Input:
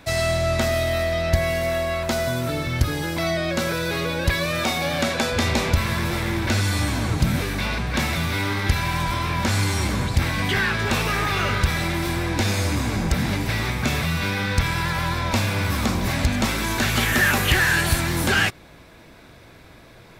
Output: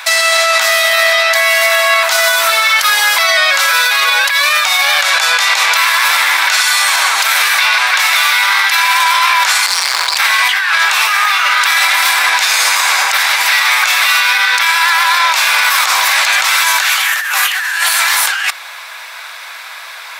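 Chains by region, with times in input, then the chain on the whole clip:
0:09.66–0:10.17: parametric band 4,700 Hz +13.5 dB 0.22 octaves + noise that follows the level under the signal 30 dB + saturating transformer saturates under 510 Hz
whole clip: inverse Chebyshev high-pass filter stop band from 160 Hz, stop band 80 dB; compressor whose output falls as the input rises −30 dBFS, ratio −1; boost into a limiter +22 dB; level −1 dB

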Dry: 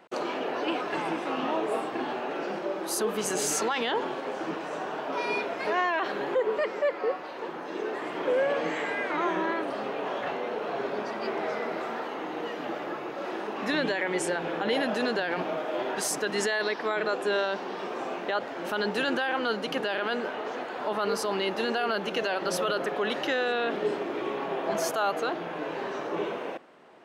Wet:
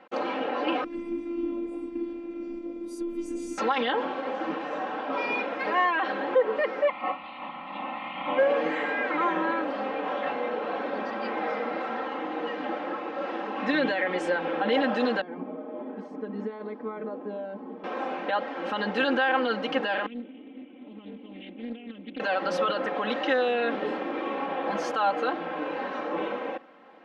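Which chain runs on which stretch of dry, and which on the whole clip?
0:00.84–0:03.58: drawn EQ curve 110 Hz 0 dB, 230 Hz +11 dB, 760 Hz −21 dB, 1,300 Hz −22 dB, 2,400 Hz −12 dB, 3,500 Hz −17 dB, 9,100 Hz +1 dB + phases set to zero 341 Hz
0:06.87–0:08.37: ceiling on every frequency bin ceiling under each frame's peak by 15 dB + low-pass filter 3,700 Hz + phaser with its sweep stopped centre 1,600 Hz, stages 6
0:15.21–0:17.84: resonant band-pass 280 Hz, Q 1.9 + comb filter 4.7 ms, depth 75%
0:20.06–0:22.20: formant resonators in series i + highs frequency-modulated by the lows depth 0.45 ms
whole clip: low-pass filter 3,200 Hz 12 dB per octave; low-shelf EQ 190 Hz −3.5 dB; comb filter 3.8 ms, depth 87%

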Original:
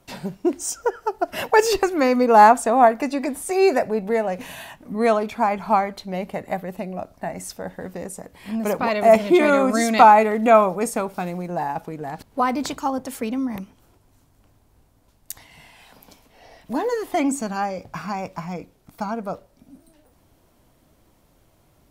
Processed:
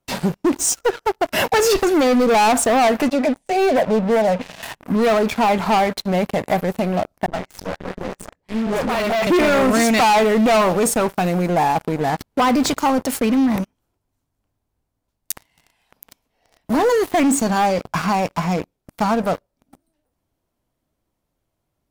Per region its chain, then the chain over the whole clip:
0:03.08–0:04.63: low-pass filter 3,100 Hz + phaser with its sweep stopped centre 340 Hz, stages 6
0:07.26–0:09.27: all-pass dispersion highs, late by 94 ms, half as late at 370 Hz + tube saturation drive 29 dB, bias 0.8 + high-frequency loss of the air 59 metres
whole clip: leveller curve on the samples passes 5; brickwall limiter −5 dBFS; level −7 dB

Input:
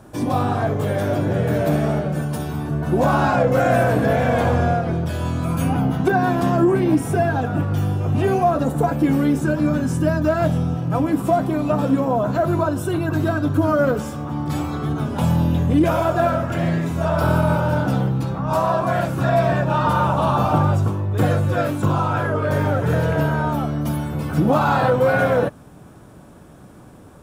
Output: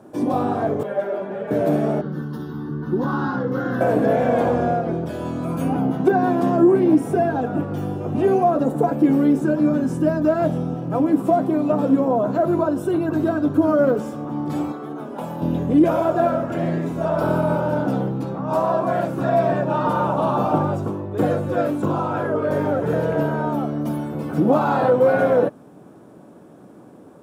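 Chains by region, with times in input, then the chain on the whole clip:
0:00.83–0:01.51: three-way crossover with the lows and the highs turned down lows −12 dB, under 480 Hz, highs −13 dB, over 3,100 Hz + comb filter 5 ms, depth 84% + string-ensemble chorus
0:02.01–0:03.81: high-shelf EQ 6,900 Hz −5 dB + phaser with its sweep stopped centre 2,400 Hz, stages 6
0:14.72–0:15.42: high-pass filter 590 Hz 6 dB per octave + parametric band 4,900 Hz −6 dB 2.4 octaves
whole clip: high-pass filter 310 Hz 12 dB per octave; tilt shelving filter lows +8.5 dB, about 710 Hz

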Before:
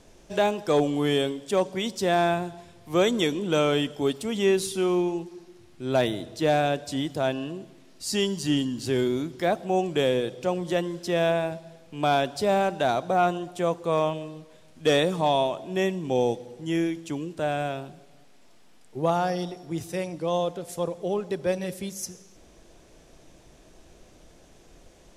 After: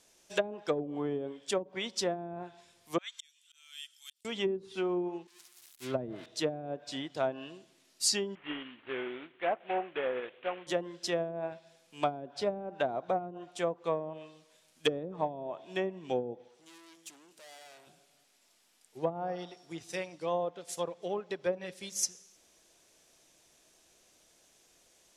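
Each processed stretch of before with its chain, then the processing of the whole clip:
0:02.98–0:04.25: Bessel high-pass filter 2,700 Hz, order 4 + volume swells 786 ms
0:05.27–0:06.26: spike at every zero crossing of −19.5 dBFS + bass and treble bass +3 dB, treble −10 dB + downward expander −33 dBFS
0:08.35–0:10.67: variable-slope delta modulation 16 kbit/s + parametric band 120 Hz −12 dB 2.1 octaves
0:16.48–0:17.87: high-pass filter 300 Hz 6 dB per octave + tube saturation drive 41 dB, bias 0.4
whole clip: treble cut that deepens with the level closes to 330 Hz, closed at −18 dBFS; spectral tilt +3.5 dB per octave; expander for the loud parts 1.5 to 1, over −46 dBFS

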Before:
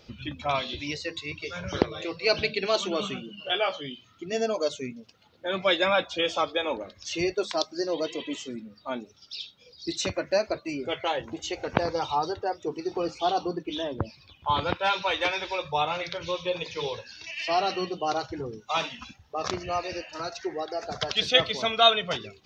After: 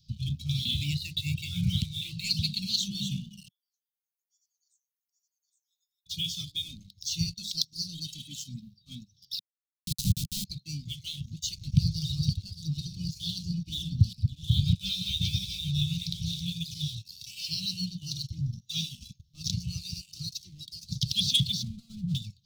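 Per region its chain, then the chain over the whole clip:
0:00.65–0:02.31: drawn EQ curve 170 Hz 0 dB, 2,100 Hz +12 dB, 3,300 Hz +6 dB, 5,800 Hz −15 dB + multiband upward and downward compressor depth 70%
0:03.48–0:06.06: inverse Chebyshev high-pass filter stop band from 2,100 Hz, stop band 80 dB + single-tap delay 817 ms −4 dB
0:09.39–0:10.45: running median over 25 samples + slack as between gear wheels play −55.5 dBFS + log-companded quantiser 2 bits
0:11.61–0:16.53: delay that plays each chunk backwards 420 ms, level −7.5 dB + low-shelf EQ 110 Hz +9 dB
0:21.63–0:22.15: Gaussian smoothing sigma 7.1 samples + slack as between gear wheels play −42.5 dBFS + compressor whose output falls as the input rises −29 dBFS
whole clip: graphic EQ with 10 bands 125 Hz +8 dB, 500 Hz −12 dB, 1,000 Hz −9 dB; leveller curve on the samples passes 2; elliptic band-stop filter 180–3,800 Hz, stop band 40 dB; level −2 dB

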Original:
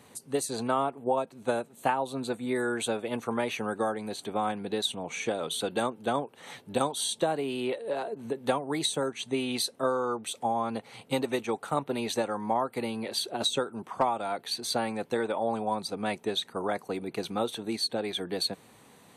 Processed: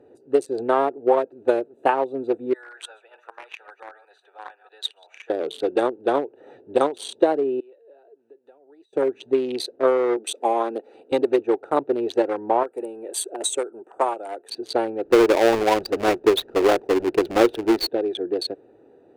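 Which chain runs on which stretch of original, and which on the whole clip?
0:02.53–0:05.30: delay that plays each chunk backwards 127 ms, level −11 dB + high-pass filter 1,100 Hz 24 dB per octave
0:07.60–0:08.93: low-pass filter 2,500 Hz 6 dB per octave + first difference + downward compressor 2.5 to 1, threshold −52 dBFS
0:10.17–0:11.12: high-pass filter 200 Hz 24 dB per octave + high-shelf EQ 3,700 Hz +10.5 dB
0:12.63–0:14.50: high-pass filter 690 Hz 6 dB per octave + high shelf with overshoot 6,100 Hz +9 dB, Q 3
0:15.05–0:17.89: each half-wave held at its own peak + low-shelf EQ 110 Hz +9 dB
whole clip: adaptive Wiener filter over 41 samples; low-pass filter 3,000 Hz 6 dB per octave; low shelf with overshoot 260 Hz −10 dB, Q 3; level +7.5 dB

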